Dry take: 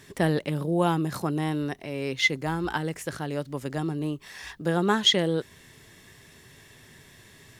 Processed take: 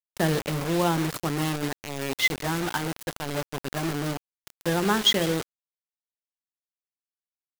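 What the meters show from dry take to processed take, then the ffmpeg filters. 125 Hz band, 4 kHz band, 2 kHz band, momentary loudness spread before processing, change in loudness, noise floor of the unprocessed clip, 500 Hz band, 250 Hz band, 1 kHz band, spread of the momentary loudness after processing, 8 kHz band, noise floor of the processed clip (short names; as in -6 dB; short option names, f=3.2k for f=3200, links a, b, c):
-0.5 dB, +0.5 dB, +1.0 dB, 12 LU, +0.5 dB, -53 dBFS, -0.5 dB, -0.5 dB, +1.0 dB, 12 LU, +4.5 dB, under -85 dBFS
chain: -filter_complex "[0:a]bandreject=f=60:t=h:w=6,bandreject=f=120:t=h:w=6,bandreject=f=180:t=h:w=6,bandreject=f=240:t=h:w=6,bandreject=f=300:t=h:w=6,bandreject=f=360:t=h:w=6,bandreject=f=420:t=h:w=6,bandreject=f=480:t=h:w=6,bandreject=f=540:t=h:w=6,asplit=2[a][b];[b]adelay=153,lowpass=f=4.6k:p=1,volume=-19.5dB,asplit=2[c][d];[d]adelay=153,lowpass=f=4.6k:p=1,volume=0.19[e];[a][c][e]amix=inputs=3:normalize=0,acrusher=bits=4:mix=0:aa=0.000001"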